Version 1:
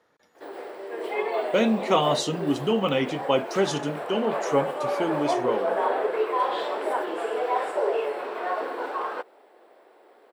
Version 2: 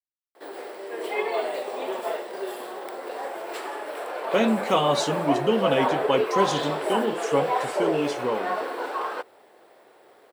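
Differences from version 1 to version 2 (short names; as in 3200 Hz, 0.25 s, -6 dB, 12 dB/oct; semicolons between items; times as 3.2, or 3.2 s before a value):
speech: entry +2.80 s; background: add high shelf 3800 Hz +9.5 dB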